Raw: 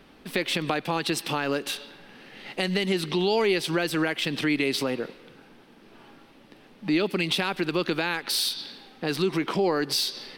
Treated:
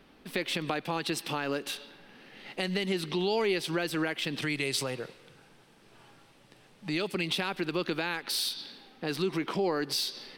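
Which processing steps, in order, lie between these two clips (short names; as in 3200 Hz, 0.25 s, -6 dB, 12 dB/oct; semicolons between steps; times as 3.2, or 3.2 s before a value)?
4.42–7.15 graphic EQ 125/250/8000 Hz +7/-8/+10 dB; gain -5 dB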